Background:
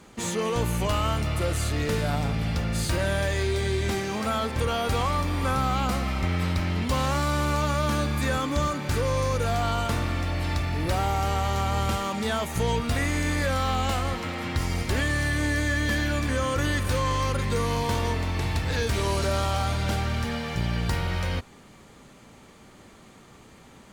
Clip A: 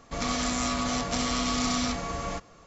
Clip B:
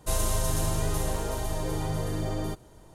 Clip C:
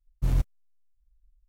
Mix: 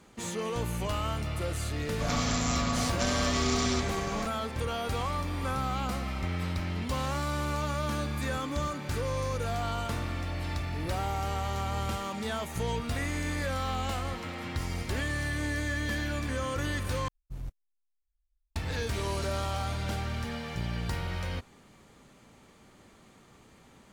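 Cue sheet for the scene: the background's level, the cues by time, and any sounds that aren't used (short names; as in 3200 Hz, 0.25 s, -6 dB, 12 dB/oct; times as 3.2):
background -6.5 dB
1.88 add A -2 dB
17.08 replace with C -15 dB
not used: B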